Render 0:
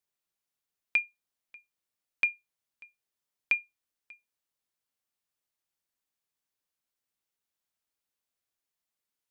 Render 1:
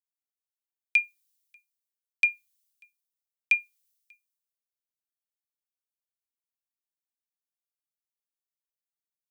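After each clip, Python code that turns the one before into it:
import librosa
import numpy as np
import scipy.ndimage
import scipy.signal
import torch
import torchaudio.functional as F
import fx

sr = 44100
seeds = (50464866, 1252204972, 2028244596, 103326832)

y = fx.tilt_eq(x, sr, slope=4.0)
y = fx.band_widen(y, sr, depth_pct=70)
y = y * 10.0 ** (-7.0 / 20.0)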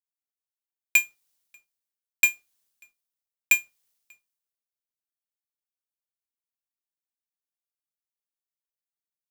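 y = fx.halfwave_hold(x, sr)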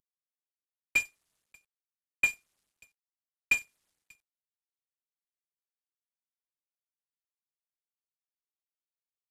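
y = fx.cvsd(x, sr, bps=64000)
y = fx.filter_lfo_notch(y, sr, shape='sine', hz=9.9, low_hz=540.0, high_hz=5900.0, q=1.9)
y = y * 10.0 ** (-3.0 / 20.0)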